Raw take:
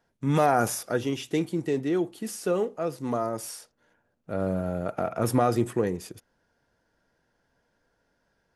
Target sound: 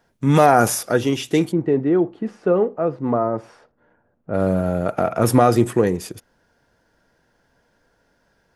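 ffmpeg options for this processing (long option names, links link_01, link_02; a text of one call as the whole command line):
ffmpeg -i in.wav -filter_complex "[0:a]asplit=3[link_01][link_02][link_03];[link_01]afade=type=out:start_time=1.51:duration=0.02[link_04];[link_02]lowpass=1400,afade=type=in:start_time=1.51:duration=0.02,afade=type=out:start_time=4.33:duration=0.02[link_05];[link_03]afade=type=in:start_time=4.33:duration=0.02[link_06];[link_04][link_05][link_06]amix=inputs=3:normalize=0,volume=8.5dB" out.wav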